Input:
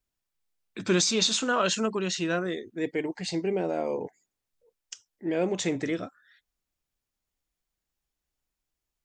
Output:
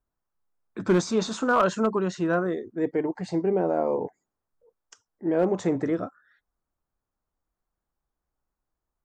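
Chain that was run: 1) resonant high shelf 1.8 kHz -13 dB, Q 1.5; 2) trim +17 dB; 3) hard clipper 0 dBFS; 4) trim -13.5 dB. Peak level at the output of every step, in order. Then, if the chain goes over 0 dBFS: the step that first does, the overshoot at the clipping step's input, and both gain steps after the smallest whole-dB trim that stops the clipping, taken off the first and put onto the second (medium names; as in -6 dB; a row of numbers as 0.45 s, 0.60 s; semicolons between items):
-11.5 dBFS, +5.5 dBFS, 0.0 dBFS, -13.5 dBFS; step 2, 5.5 dB; step 2 +11 dB, step 4 -7.5 dB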